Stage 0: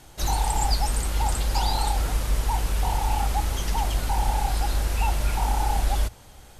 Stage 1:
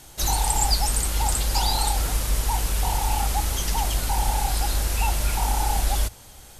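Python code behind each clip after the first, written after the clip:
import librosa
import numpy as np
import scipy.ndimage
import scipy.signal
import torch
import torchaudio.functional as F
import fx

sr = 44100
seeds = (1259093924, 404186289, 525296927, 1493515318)

y = fx.high_shelf(x, sr, hz=4000.0, db=9.0)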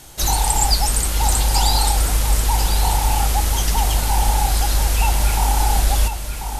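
y = x + 10.0 ** (-8.0 / 20.0) * np.pad(x, (int(1040 * sr / 1000.0), 0))[:len(x)]
y = y * 10.0 ** (4.5 / 20.0)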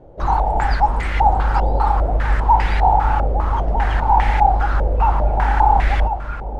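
y = fx.filter_held_lowpass(x, sr, hz=5.0, low_hz=540.0, high_hz=2000.0)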